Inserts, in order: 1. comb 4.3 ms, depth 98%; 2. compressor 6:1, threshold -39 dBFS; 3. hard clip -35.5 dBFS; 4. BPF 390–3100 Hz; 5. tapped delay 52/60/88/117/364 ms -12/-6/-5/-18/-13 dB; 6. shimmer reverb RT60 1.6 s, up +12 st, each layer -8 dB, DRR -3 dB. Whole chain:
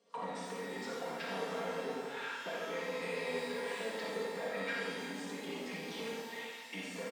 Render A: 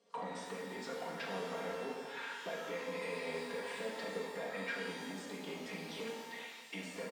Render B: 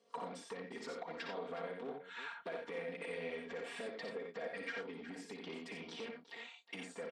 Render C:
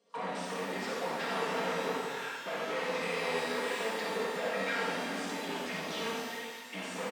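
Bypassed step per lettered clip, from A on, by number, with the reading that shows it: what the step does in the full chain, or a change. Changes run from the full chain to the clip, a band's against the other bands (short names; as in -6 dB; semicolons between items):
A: 5, loudness change -2.5 LU; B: 6, loudness change -5.5 LU; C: 2, mean gain reduction 12.0 dB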